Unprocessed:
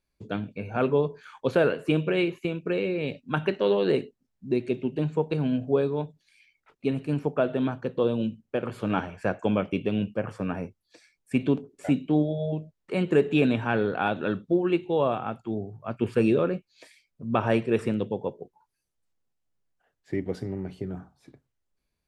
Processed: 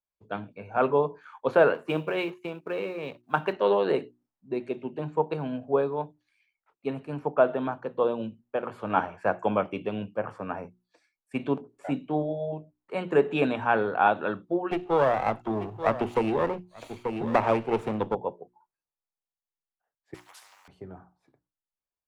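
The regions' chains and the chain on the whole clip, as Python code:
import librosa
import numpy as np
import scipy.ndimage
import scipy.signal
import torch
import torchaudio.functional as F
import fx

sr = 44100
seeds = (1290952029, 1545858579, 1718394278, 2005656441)

y = fx.chain(x, sr, fx.law_mismatch(coded='A'),
    fx.highpass(hz=45.0, slope=12), at=(1.74, 3.53))
y = fx.chain(y, sr, fx.lower_of_two(delay_ms=0.3),
    fx.echo_single(ms=886, db=-19.5),
    fx.band_squash(depth_pct=100), at=(14.71, 18.15))
y = fx.chain(y, sr, fx.ellip_highpass(hz=980.0, order=4, stop_db=60),
    fx.high_shelf(hz=3500.0, db=9.0),
    fx.spectral_comp(ratio=4.0), at=(20.14, 20.68))
y = fx.peak_eq(y, sr, hz=930.0, db=14.0, octaves=1.9)
y = fx.hum_notches(y, sr, base_hz=60, count=6)
y = fx.band_widen(y, sr, depth_pct=40)
y = y * librosa.db_to_amplitude(-7.5)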